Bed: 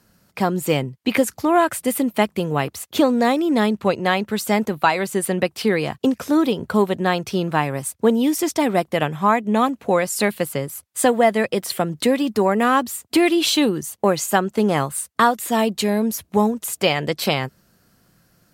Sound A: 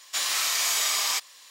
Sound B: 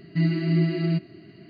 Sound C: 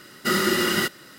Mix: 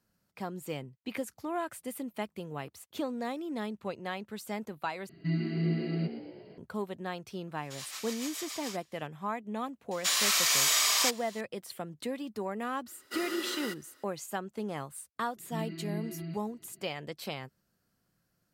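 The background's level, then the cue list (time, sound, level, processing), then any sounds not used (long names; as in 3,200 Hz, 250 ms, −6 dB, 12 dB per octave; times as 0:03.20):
bed −18 dB
0:05.09: overwrite with B −8.5 dB + echo with shifted repeats 116 ms, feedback 58%, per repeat +65 Hz, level −11 dB
0:07.57: mix in A −14 dB + rotating-speaker cabinet horn 7 Hz
0:09.91: mix in A −0.5 dB + notch filter 830 Hz, Q 15
0:12.86: mix in C −15.5 dB + Butterworth high-pass 260 Hz 48 dB per octave
0:15.36: mix in B −16 dB + all-pass dispersion highs, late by 46 ms, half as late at 1,800 Hz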